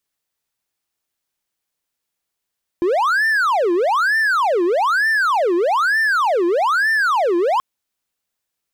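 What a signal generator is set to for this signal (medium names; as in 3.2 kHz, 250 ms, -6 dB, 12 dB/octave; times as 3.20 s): siren wail 341–1790 Hz 1.1 per s triangle -12 dBFS 4.78 s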